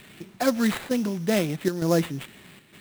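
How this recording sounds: a quantiser's noise floor 10-bit, dither triangular; chopped level 1.1 Hz, depth 60%, duty 85%; aliases and images of a low sample rate 5.8 kHz, jitter 20%

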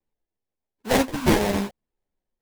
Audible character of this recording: phasing stages 4, 1.4 Hz, lowest notch 420–2800 Hz; aliases and images of a low sample rate 1.3 kHz, jitter 20%; a shimmering, thickened sound

